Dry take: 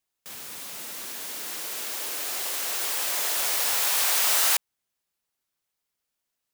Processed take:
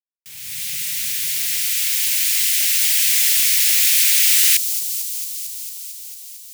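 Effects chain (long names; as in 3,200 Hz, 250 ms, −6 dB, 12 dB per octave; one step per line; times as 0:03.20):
elliptic band-stop filter 150–2,100 Hz, stop band 80 dB
low-shelf EQ 98 Hz +5 dB
automatic gain control gain up to 14.5 dB
bit reduction 8 bits
on a send: delay with a high-pass on its return 225 ms, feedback 78%, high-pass 4,800 Hz, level −10 dB
on the sum: level −1 dB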